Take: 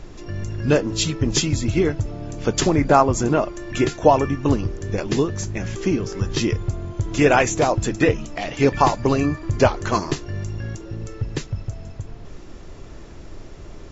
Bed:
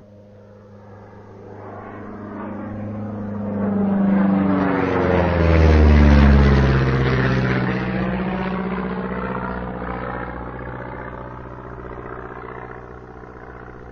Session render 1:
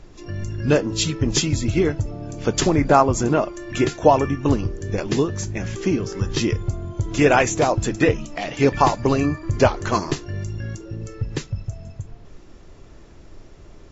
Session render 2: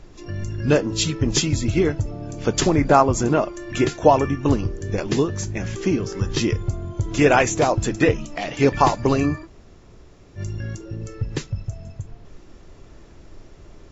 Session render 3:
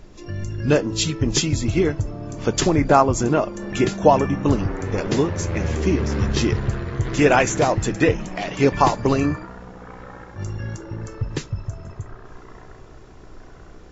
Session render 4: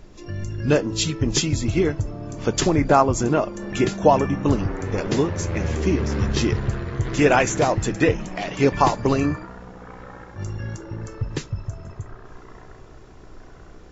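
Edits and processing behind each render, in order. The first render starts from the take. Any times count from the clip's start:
noise reduction from a noise print 6 dB
0:09.45–0:10.38: fill with room tone, crossfade 0.06 s
mix in bed −12.5 dB
level −1 dB; brickwall limiter −3 dBFS, peak gain reduction 1 dB

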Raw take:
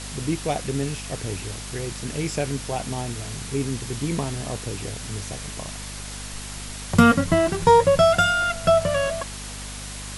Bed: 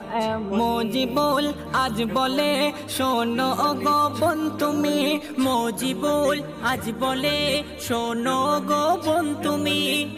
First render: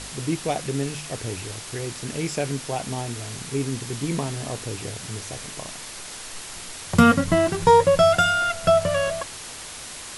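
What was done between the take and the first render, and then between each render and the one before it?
hum removal 50 Hz, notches 5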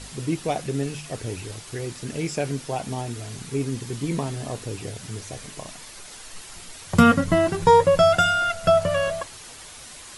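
broadband denoise 7 dB, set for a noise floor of −38 dBFS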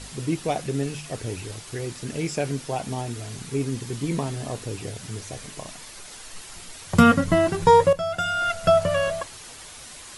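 0:07.93–0:08.49: fade in quadratic, from −12.5 dB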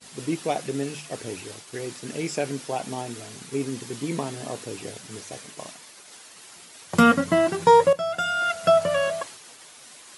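high-pass filter 200 Hz 12 dB per octave
downward expander −37 dBFS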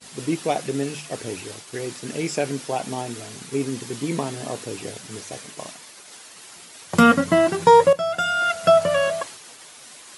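level +3 dB
brickwall limiter −3 dBFS, peak gain reduction 1.5 dB

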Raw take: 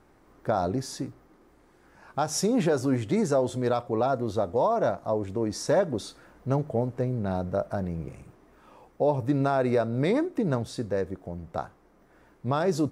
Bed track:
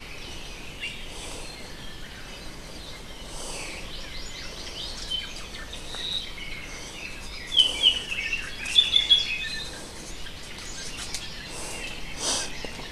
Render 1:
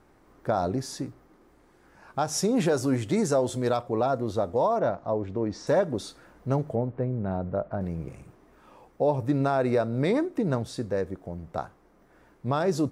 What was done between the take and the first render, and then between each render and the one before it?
0:02.56–0:03.77: high-shelf EQ 4,000 Hz +6 dB
0:04.79–0:05.67: high-frequency loss of the air 150 metres
0:06.75–0:07.81: high-frequency loss of the air 440 metres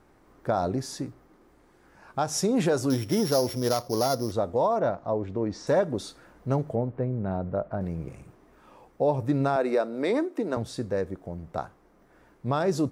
0:02.90–0:04.32: samples sorted by size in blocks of 8 samples
0:09.56–0:10.57: high-pass filter 250 Hz 24 dB per octave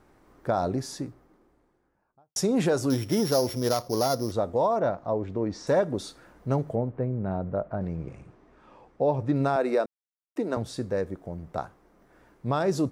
0:00.78–0:02.36: fade out and dull
0:06.76–0:09.36: high-frequency loss of the air 86 metres
0:09.86–0:10.36: silence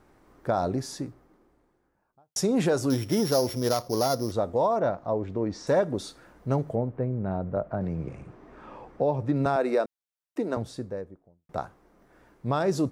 0:07.56–0:09.46: multiband upward and downward compressor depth 40%
0:10.40–0:11.49: fade out and dull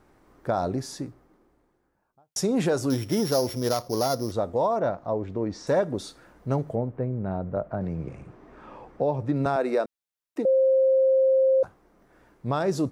0:10.45–0:11.63: beep over 529 Hz −16.5 dBFS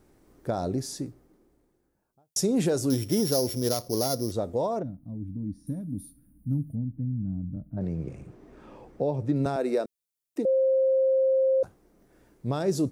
0:04.82–0:07.77: gain on a spectral selection 320–8,900 Hz −26 dB
drawn EQ curve 390 Hz 0 dB, 1,100 Hz −9 dB, 10,000 Hz +5 dB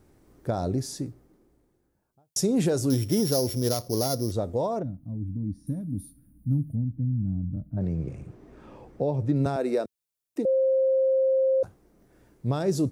parametric band 93 Hz +5.5 dB 1.4 octaves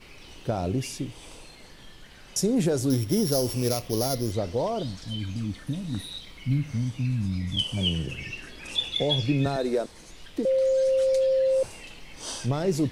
mix in bed track −9 dB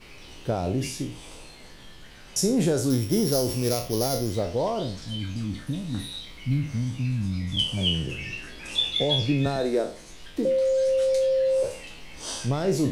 peak hold with a decay on every bin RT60 0.41 s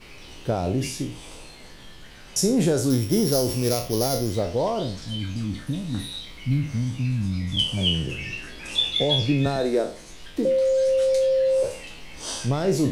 level +2 dB

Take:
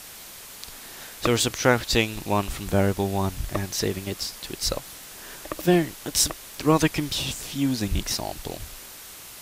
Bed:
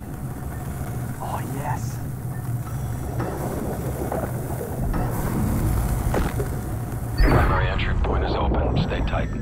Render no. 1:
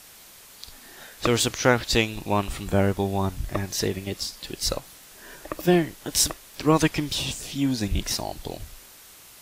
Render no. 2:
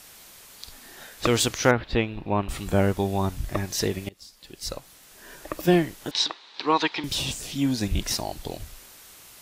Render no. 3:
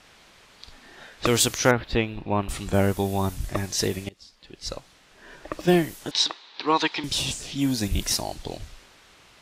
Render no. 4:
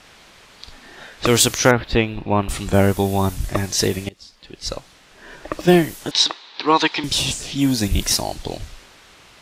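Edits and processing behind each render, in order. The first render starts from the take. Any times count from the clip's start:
noise reduction from a noise print 6 dB
0:01.71–0:02.49: high-frequency loss of the air 410 metres; 0:04.09–0:05.54: fade in, from −23.5 dB; 0:06.11–0:07.04: loudspeaker in its box 410–4,600 Hz, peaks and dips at 590 Hz −8 dB, 910 Hz +7 dB, 3,900 Hz +10 dB
low-pass that shuts in the quiet parts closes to 2,900 Hz, open at −21.5 dBFS; high-shelf EQ 7,100 Hz +8 dB
level +6 dB; brickwall limiter −1 dBFS, peak gain reduction 2.5 dB

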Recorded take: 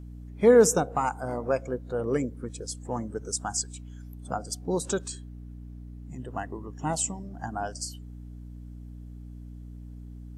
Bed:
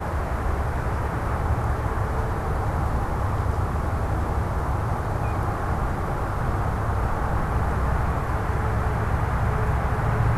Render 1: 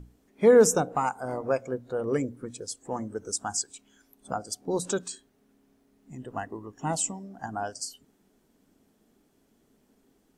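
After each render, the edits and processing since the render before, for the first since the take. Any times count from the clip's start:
mains-hum notches 60/120/180/240/300 Hz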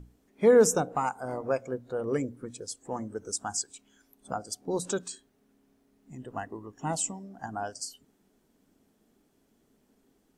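level −2 dB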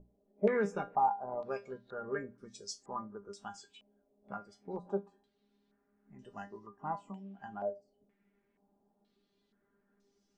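tuned comb filter 200 Hz, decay 0.19 s, harmonics all, mix 90%
low-pass on a step sequencer 2.1 Hz 610–5,500 Hz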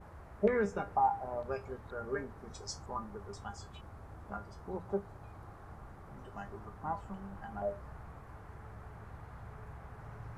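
mix in bed −25.5 dB

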